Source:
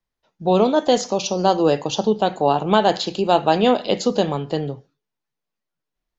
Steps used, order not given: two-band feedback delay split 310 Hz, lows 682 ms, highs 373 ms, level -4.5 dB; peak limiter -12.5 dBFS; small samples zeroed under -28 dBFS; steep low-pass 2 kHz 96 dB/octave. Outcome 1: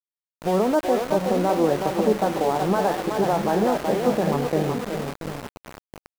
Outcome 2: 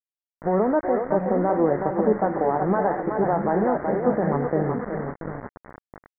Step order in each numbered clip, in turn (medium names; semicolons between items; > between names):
steep low-pass > peak limiter > two-band feedback delay > small samples zeroed; peak limiter > two-band feedback delay > small samples zeroed > steep low-pass